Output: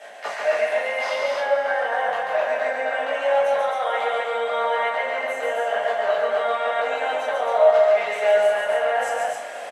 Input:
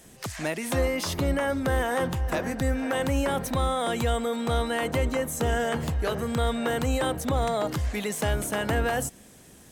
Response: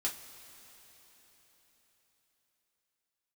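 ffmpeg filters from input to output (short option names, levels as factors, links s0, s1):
-filter_complex "[0:a]lowpass=f=2600:p=1,equalizer=f=2000:t=o:w=2.5:g=14,alimiter=limit=0.237:level=0:latency=1:release=495,areverse,acompressor=threshold=0.0158:ratio=6,areverse,flanger=delay=19:depth=2.7:speed=0.74,asplit=2[s0][s1];[s1]aeval=exprs='sgn(val(0))*max(abs(val(0))-0.001,0)':c=same,volume=0.531[s2];[s0][s2]amix=inputs=2:normalize=0,highpass=f=630:t=q:w=7.5,aecho=1:1:139.9|265.3:0.708|0.708[s3];[1:a]atrim=start_sample=2205,afade=t=out:st=0.43:d=0.01,atrim=end_sample=19404,asetrate=26460,aresample=44100[s4];[s3][s4]afir=irnorm=-1:irlink=0"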